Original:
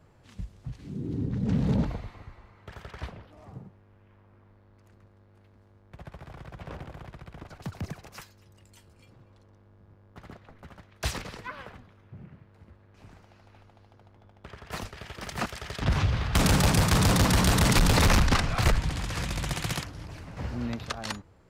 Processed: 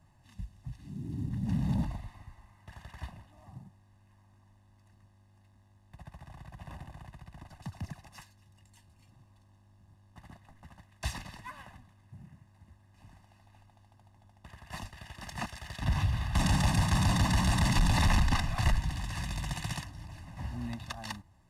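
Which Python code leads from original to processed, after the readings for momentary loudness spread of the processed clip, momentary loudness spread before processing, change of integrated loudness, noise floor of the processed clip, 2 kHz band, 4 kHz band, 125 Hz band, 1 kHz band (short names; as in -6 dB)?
23 LU, 22 LU, -5.0 dB, -63 dBFS, -6.0 dB, -7.0 dB, -4.0 dB, -5.0 dB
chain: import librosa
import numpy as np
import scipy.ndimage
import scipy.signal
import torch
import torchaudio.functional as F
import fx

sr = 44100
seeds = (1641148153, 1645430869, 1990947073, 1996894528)

y = fx.cvsd(x, sr, bps=64000)
y = y + 0.91 * np.pad(y, (int(1.1 * sr / 1000.0), 0))[:len(y)]
y = y * 10.0 ** (-8.5 / 20.0)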